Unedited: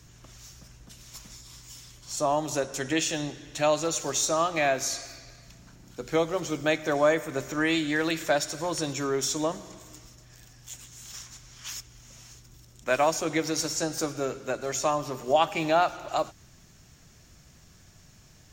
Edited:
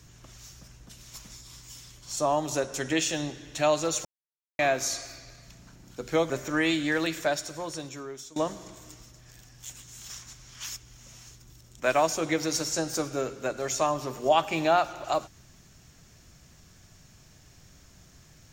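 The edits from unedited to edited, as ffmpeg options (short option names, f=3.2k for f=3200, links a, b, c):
-filter_complex "[0:a]asplit=5[a][b][c][d][e];[a]atrim=end=4.05,asetpts=PTS-STARTPTS,afade=t=out:st=4.046:d=0.004:c=hsin[f];[b]atrim=start=4.05:end=4.59,asetpts=PTS-STARTPTS,volume=0[g];[c]atrim=start=4.59:end=6.302,asetpts=PTS-STARTPTS,afade=t=in:d=0.004:c=hsin[h];[d]atrim=start=7.338:end=9.4,asetpts=PTS-STARTPTS,afade=t=out:st=0.612:d=1.45:silence=0.0891251[i];[e]atrim=start=9.4,asetpts=PTS-STARTPTS,afade=t=in:d=0.004:c=hsin:silence=0.0891251[j];[f][g][h]concat=n=3:v=0:a=1[k];[i][j]concat=n=2:v=0:a=1[l];[k][l]acrossfade=d=0.004:c1=hsin:c2=hsin"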